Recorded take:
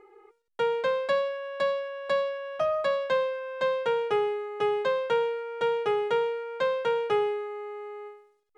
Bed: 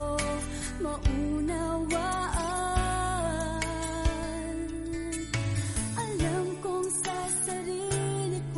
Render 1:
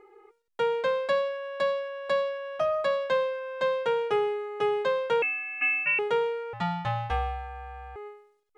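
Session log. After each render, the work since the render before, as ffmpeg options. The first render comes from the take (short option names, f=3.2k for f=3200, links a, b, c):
-filter_complex "[0:a]asettb=1/sr,asplit=3[a][b][c];[a]atrim=end=5.224[d];[b]atrim=start=5.22:end=5.99,asetpts=PTS-STARTPTS,afade=t=in:d=0.004:c=qsin,afade=t=out:st=0.766:d=0.004:c=qsin,lowpass=f=2.6k:t=q:w=0.5098,lowpass=f=2.6k:t=q:w=0.6013,lowpass=f=2.6k:t=q:w=0.9,lowpass=f=2.6k:t=q:w=2.563,afreqshift=-3100[e];[c]atrim=start=5.986[f];[d][e]acrossfade=d=0.004:c1=hsin:c2=qsin[g];[g][f]acrossfade=d=0.004:c1=qsin:c2=hsin,asettb=1/sr,asplit=3[h][i][j];[h]atrim=end=6.534[k];[i]atrim=start=6.53:end=7.96,asetpts=PTS-STARTPTS,afade=t=in:d=0.004:c=qsin,afade=t=out:st=1.426:d=0.004:c=qsin,aeval=exprs='val(0)*sin(2*PI*350*n/s)':c=same[l];[j]atrim=start=7.956[m];[k][l]acrossfade=d=0.004:c1=hsin:c2=qsin[n];[n][m]acrossfade=d=0.004:c1=qsin:c2=hsin"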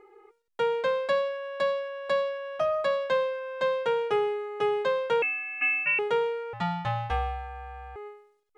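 -af anull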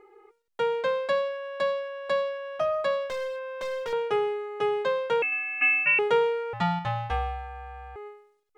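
-filter_complex "[0:a]asettb=1/sr,asplit=3[a][b][c];[a]atrim=end=3.074[d];[b]atrim=start=3.07:end=3.93,asetpts=PTS-STARTPTS,afade=t=in:d=0.004:c=qsin,afade=t=out:st=0.856:d=0.004:c=qsin,asoftclip=type=hard:threshold=-30dB[e];[c]atrim=start=3.926[f];[d][e]acrossfade=d=0.004:c1=hsin:c2=qsin[g];[g][f]acrossfade=d=0.004:c1=qsin:c2=hsin,asplit=3[h][i][j];[h]atrim=end=5.322[k];[i]atrim=start=5.318:end=6.792,asetpts=PTS-STARTPTS,volume=3.5dB[l];[j]atrim=start=6.788[m];[k][l]acrossfade=d=0.004:c1=hsin:c2=hsin[n];[n][m]acrossfade=d=0.004:c1=hsin:c2=hsin"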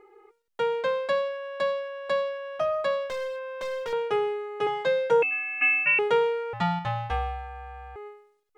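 -filter_complex "[0:a]asettb=1/sr,asplit=3[a][b][c];[a]atrim=end=4.664[d];[b]atrim=start=4.66:end=5.31,asetpts=PTS-STARTPTS,afade=t=in:d=0.004:c=qsin,afade=t=out:st=0.646:d=0.004:c=qsin,aecho=1:1:6.2:0.93,atrim=end_sample=28665[e];[c]atrim=start=5.306[f];[d][e]acrossfade=d=0.004:c1=hsin:c2=qsin[g];[g][f]acrossfade=d=0.004:c1=qsin:c2=hsin"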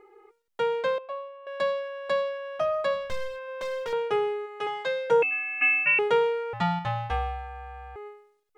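-filter_complex "[0:a]asettb=1/sr,asplit=3[a][b][c];[a]atrim=end=0.984[d];[b]atrim=start=0.98:end=1.47,asetpts=PTS-STARTPTS,afade=t=in:d=0.004:c=qsin,afade=t=out:st=0.486:d=0.004:c=qsin,asplit=3[e][f][g];[e]bandpass=f=730:t=q:w=8,volume=0dB[h];[f]bandpass=f=1.09k:t=q:w=8,volume=-6dB[i];[g]bandpass=f=2.44k:t=q:w=8,volume=-9dB[j];[h][i][j]amix=inputs=3:normalize=0[k];[c]atrim=start=1.466[l];[d][k]acrossfade=d=0.004:c1=hsin:c2=qsin[m];[m][l]acrossfade=d=0.004:c1=qsin:c2=hsin,asplit=3[n][o][p];[n]afade=t=out:st=2.93:d=0.02[q];[o]asubboost=boost=7.5:cutoff=170,afade=t=in:st=2.93:d=0.02,afade=t=out:st=3.47:d=0.02[r];[p]afade=t=in:st=3.47:d=0.02[s];[q][r][s]amix=inputs=3:normalize=0,asplit=3[t][u][v];[t]afade=t=out:st=4.45:d=0.02[w];[u]lowshelf=f=480:g=-11,afade=t=in:st=4.45:d=0.02,afade=t=out:st=5.07:d=0.02[x];[v]afade=t=in:st=5.07:d=0.02[y];[w][x][y]amix=inputs=3:normalize=0"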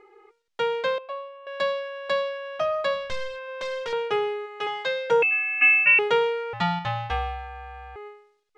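-af "lowpass=5.4k,highshelf=f=2.1k:g=9"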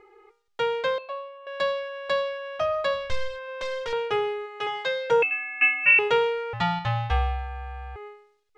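-af "lowshelf=f=130:t=q:w=1.5:g=6.5,bandreject=f=202.6:t=h:w=4,bandreject=f=405.2:t=h:w=4,bandreject=f=607.8:t=h:w=4,bandreject=f=810.4:t=h:w=4,bandreject=f=1.013k:t=h:w=4,bandreject=f=1.2156k:t=h:w=4,bandreject=f=1.4182k:t=h:w=4,bandreject=f=1.6208k:t=h:w=4,bandreject=f=1.8234k:t=h:w=4,bandreject=f=2.026k:t=h:w=4,bandreject=f=2.2286k:t=h:w=4,bandreject=f=2.4312k:t=h:w=4,bandreject=f=2.6338k:t=h:w=4,bandreject=f=2.8364k:t=h:w=4,bandreject=f=3.039k:t=h:w=4,bandreject=f=3.2416k:t=h:w=4,bandreject=f=3.4442k:t=h:w=4,bandreject=f=3.6468k:t=h:w=4,bandreject=f=3.8494k:t=h:w=4,bandreject=f=4.052k:t=h:w=4,bandreject=f=4.2546k:t=h:w=4,bandreject=f=4.4572k:t=h:w=4,bandreject=f=4.6598k:t=h:w=4,bandreject=f=4.8624k:t=h:w=4,bandreject=f=5.065k:t=h:w=4"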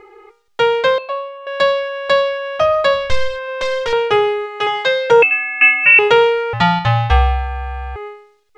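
-af "alimiter=level_in=11.5dB:limit=-1dB:release=50:level=0:latency=1"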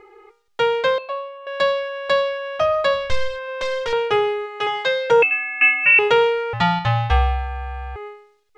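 -af "volume=-4.5dB"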